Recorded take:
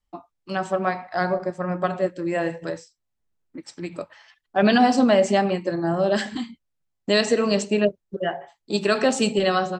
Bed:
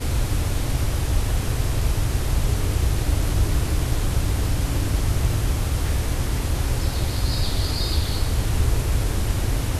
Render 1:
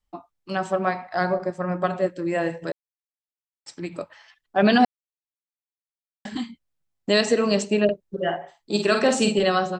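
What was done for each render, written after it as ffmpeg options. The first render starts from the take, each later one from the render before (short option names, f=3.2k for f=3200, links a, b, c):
-filter_complex "[0:a]asettb=1/sr,asplit=3[a][b][c];[a]atrim=end=7.844[d];[b]atrim=start=7.84:end=9.43,asetpts=PTS-STARTPTS,afade=t=in:d=0.004:c=qsin,afade=t=out:st=1.586:d=0.004:c=qsin,asplit=2[e][f];[f]adelay=48,volume=-6dB[g];[e][g]amix=inputs=2:normalize=0,atrim=end_sample=70119[h];[c]atrim=start=9.426[i];[d][h]acrossfade=d=0.004:c1=hsin:c2=qsin[j];[j][i]acrossfade=d=0.004:c1=qsin:c2=hsin,asplit=5[k][l][m][n][o];[k]atrim=end=2.72,asetpts=PTS-STARTPTS,afade=t=out:st=2.716:d=0.004:c=hsin[p];[l]atrim=start=2.72:end=3.66,asetpts=PTS-STARTPTS,volume=0[q];[m]atrim=start=3.66:end=4.85,asetpts=PTS-STARTPTS,afade=t=in:d=0.004:c=hsin,afade=t=out:st=1.186:d=0.004:c=hsin[r];[n]atrim=start=4.85:end=6.25,asetpts=PTS-STARTPTS,volume=0[s];[o]atrim=start=6.25,asetpts=PTS-STARTPTS,afade=t=in:d=0.004:c=hsin[t];[p][q][r][s][t]concat=n=5:v=0:a=1"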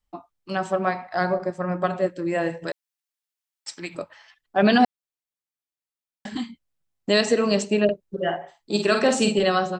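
-filter_complex "[0:a]asettb=1/sr,asplit=3[a][b][c];[a]atrim=end=2.684[d];[b]atrim=start=2.68:end=3.95,asetpts=PTS-STARTPTS,afade=t=in:d=0.004:c=qsin,afade=t=out:st=1.266:d=0.004:c=qsin,tiltshelf=f=670:g=-7[e];[c]atrim=start=3.946[f];[d][e]acrossfade=d=0.004:c1=hsin:c2=qsin[g];[g][f]acrossfade=d=0.004:c1=qsin:c2=hsin"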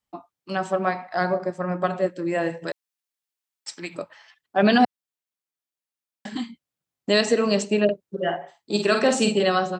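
-af "highpass=110"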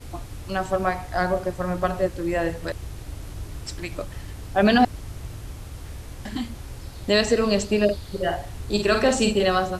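-filter_complex "[1:a]volume=-14.5dB[a];[0:a][a]amix=inputs=2:normalize=0"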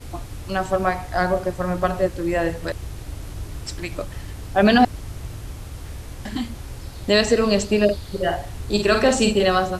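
-af "volume=2.5dB"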